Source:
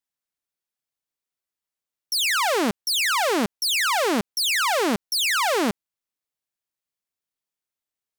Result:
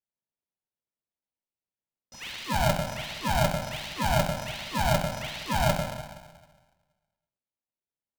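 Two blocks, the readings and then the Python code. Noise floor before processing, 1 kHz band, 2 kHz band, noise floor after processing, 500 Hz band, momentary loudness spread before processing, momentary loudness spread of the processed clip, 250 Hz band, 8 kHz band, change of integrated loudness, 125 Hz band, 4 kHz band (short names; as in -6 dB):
under -85 dBFS, -4.0 dB, -9.5 dB, under -85 dBFS, -4.5 dB, 4 LU, 11 LU, -6.0 dB, -11.5 dB, -7.0 dB, +12.5 dB, -11.0 dB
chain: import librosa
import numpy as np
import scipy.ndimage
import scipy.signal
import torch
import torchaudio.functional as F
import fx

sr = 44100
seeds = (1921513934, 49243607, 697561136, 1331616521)

y = np.r_[np.sort(x[:len(x) // 8 * 8].reshape(-1, 8), axis=1).ravel(), x[len(x) // 8 * 8:]]
y = scipy.signal.sosfilt(scipy.signal.ellip(3, 1.0, 40, [600.0, 2300.0], 'bandstop', fs=sr, output='sos'), y)
y = fx.spacing_loss(y, sr, db_at_10k=43)
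y = fx.rev_plate(y, sr, seeds[0], rt60_s=1.4, hf_ratio=0.95, predelay_ms=0, drr_db=0.0)
y = y * np.sign(np.sin(2.0 * np.pi * 380.0 * np.arange(len(y)) / sr))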